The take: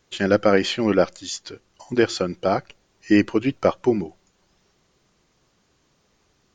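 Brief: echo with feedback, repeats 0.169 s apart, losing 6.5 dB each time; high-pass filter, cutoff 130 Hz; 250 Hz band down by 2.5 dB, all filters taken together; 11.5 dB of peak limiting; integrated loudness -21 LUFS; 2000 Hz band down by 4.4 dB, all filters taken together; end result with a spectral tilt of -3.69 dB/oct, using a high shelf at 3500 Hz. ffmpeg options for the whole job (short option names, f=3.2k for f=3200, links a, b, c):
-af "highpass=130,equalizer=f=250:t=o:g=-3,equalizer=f=2k:t=o:g=-7.5,highshelf=f=3.5k:g=6,alimiter=limit=-16dB:level=0:latency=1,aecho=1:1:169|338|507|676|845|1014:0.473|0.222|0.105|0.0491|0.0231|0.0109,volume=6.5dB"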